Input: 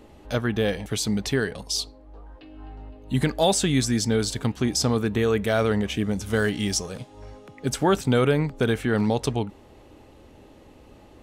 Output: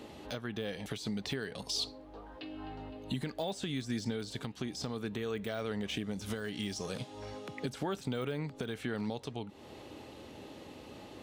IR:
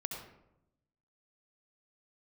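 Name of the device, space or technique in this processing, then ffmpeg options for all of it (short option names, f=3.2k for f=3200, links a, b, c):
broadcast voice chain: -af "highpass=110,deesser=0.85,acompressor=threshold=-33dB:ratio=5,equalizer=f=3.9k:t=o:w=1.2:g=6,alimiter=level_in=2dB:limit=-24dB:level=0:latency=1:release=465,volume=-2dB,volume=1.5dB"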